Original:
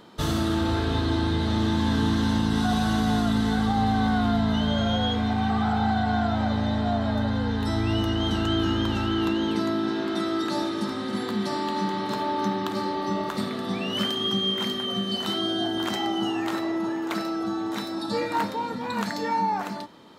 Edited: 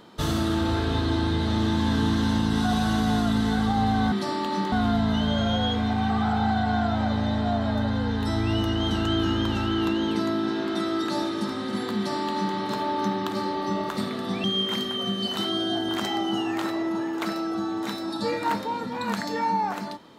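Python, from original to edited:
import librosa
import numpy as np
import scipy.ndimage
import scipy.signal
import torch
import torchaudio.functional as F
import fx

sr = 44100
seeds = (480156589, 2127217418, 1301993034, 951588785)

y = fx.edit(x, sr, fx.duplicate(start_s=11.36, length_s=0.6, to_s=4.12),
    fx.cut(start_s=13.84, length_s=0.49), tone=tone)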